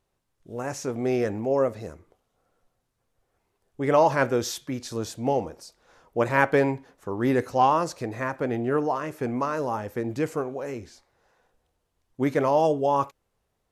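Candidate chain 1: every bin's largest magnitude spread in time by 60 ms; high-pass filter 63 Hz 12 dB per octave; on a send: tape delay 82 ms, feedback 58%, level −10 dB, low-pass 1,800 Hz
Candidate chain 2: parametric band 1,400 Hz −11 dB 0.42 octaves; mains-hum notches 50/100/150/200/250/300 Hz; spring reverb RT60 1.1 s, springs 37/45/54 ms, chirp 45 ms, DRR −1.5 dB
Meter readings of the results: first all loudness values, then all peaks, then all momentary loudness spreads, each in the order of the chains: −22.5, −22.5 LKFS; −2.0, −4.5 dBFS; 14, 15 LU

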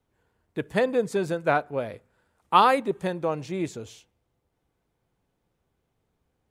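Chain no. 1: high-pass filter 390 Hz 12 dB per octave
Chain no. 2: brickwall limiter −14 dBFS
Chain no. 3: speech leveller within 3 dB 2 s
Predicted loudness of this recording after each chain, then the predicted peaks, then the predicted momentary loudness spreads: −26.0, −28.0, −24.0 LKFS; −4.5, −14.0, −5.0 dBFS; 19, 13, 18 LU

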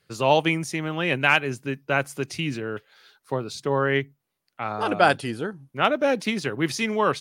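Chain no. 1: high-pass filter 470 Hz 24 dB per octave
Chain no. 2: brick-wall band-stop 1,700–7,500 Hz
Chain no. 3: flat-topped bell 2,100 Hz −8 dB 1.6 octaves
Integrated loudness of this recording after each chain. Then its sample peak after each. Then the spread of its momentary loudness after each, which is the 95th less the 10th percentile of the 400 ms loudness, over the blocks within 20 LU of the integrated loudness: −25.5, −25.5, −26.0 LKFS; −3.5, −4.5, −6.5 dBFS; 15, 11, 11 LU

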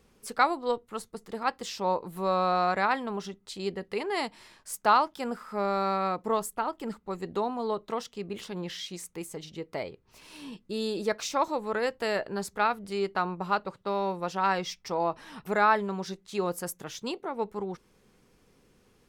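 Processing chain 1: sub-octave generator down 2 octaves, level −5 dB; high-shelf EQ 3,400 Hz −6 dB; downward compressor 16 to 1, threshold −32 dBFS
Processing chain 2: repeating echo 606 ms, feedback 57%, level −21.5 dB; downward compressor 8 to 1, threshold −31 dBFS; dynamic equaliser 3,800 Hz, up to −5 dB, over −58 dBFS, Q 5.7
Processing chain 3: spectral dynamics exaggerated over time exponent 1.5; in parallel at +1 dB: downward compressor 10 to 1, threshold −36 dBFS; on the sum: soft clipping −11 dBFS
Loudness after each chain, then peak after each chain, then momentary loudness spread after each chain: −39.0, −37.5, −31.0 LKFS; −18.5, −17.5, −12.5 dBFS; 5, 6, 11 LU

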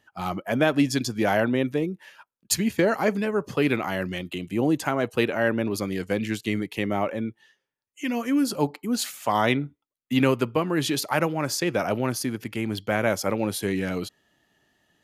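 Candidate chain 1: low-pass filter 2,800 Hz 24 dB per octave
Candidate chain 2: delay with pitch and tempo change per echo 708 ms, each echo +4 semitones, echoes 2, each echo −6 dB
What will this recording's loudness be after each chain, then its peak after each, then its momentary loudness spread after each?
−26.0, −25.0 LKFS; −8.0, −6.5 dBFS; 9, 8 LU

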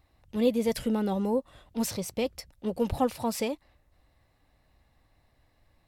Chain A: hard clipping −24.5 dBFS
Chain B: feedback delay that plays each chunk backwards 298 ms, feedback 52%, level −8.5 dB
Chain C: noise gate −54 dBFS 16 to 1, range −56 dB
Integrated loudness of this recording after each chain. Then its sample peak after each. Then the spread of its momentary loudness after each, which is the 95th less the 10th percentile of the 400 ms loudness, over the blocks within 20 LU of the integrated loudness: −32.0, −29.5, −30.0 LKFS; −24.5, −13.0, −13.5 dBFS; 8, 14, 10 LU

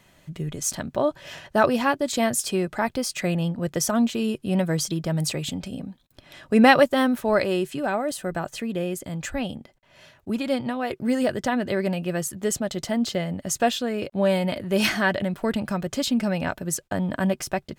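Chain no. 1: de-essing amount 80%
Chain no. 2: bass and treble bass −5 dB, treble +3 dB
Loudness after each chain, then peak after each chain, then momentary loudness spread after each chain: −25.5, −25.0 LKFS; −4.0, −3.0 dBFS; 10, 10 LU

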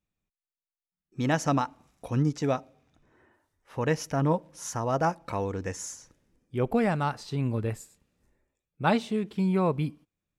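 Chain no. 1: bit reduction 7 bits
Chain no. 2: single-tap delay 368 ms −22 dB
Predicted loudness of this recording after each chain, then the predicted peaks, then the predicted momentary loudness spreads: −29.0, −29.0 LKFS; −11.5, −11.0 dBFS; 11, 13 LU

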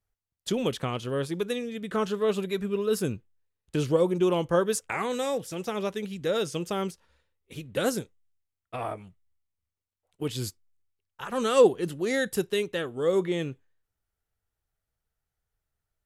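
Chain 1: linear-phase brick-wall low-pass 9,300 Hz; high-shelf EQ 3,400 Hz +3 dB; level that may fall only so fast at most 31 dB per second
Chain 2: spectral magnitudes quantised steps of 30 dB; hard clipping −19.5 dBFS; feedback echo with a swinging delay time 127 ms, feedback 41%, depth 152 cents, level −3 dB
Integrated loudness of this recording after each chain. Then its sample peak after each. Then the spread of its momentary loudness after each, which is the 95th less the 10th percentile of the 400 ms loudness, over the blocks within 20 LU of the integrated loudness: −26.0, −28.0 LKFS; −8.0, −13.5 dBFS; 13, 15 LU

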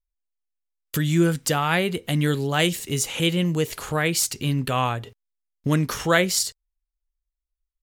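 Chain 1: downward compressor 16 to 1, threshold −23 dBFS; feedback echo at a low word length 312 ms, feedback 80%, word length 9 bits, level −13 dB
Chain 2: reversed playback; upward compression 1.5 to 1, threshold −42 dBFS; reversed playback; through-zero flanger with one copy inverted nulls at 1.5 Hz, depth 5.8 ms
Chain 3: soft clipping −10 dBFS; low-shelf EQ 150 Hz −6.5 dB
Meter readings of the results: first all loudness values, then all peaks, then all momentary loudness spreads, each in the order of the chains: −28.5, −25.5, −24.5 LKFS; −13.0, −10.0, −9.5 dBFS; 13, 7, 6 LU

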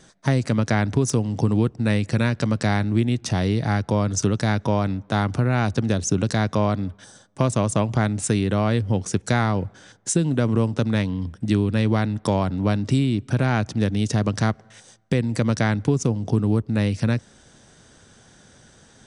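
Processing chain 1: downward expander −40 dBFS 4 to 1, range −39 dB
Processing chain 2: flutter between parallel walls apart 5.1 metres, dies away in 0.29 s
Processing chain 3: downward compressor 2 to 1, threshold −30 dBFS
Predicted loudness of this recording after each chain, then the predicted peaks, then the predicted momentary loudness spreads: −22.5, −21.0, −29.5 LKFS; −8.0, −6.0, −11.5 dBFS; 3, 4, 3 LU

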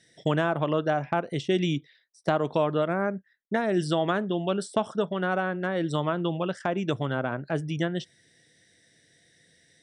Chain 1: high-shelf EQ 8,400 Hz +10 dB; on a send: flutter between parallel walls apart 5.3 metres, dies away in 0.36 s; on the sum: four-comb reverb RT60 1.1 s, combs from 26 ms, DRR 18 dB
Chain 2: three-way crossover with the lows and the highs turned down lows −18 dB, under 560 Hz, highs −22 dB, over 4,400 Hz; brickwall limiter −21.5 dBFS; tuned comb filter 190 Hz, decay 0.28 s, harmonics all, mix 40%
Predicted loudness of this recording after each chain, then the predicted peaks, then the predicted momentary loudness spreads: −26.5, −38.0 LKFS; −9.5, −24.0 dBFS; 6, 6 LU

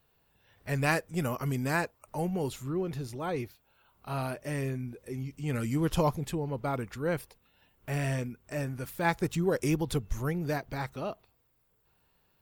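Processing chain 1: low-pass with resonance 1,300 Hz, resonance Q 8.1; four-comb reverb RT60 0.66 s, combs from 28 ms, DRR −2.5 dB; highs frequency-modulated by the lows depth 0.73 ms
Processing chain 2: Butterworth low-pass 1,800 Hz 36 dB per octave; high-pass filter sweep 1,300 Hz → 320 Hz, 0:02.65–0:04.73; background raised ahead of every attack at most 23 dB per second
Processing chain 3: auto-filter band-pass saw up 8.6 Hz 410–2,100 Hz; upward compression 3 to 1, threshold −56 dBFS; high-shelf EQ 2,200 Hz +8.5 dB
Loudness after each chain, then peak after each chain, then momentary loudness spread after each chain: −25.5, −28.5, −40.0 LKFS; −6.0, −9.5, −14.5 dBFS; 12, 17, 12 LU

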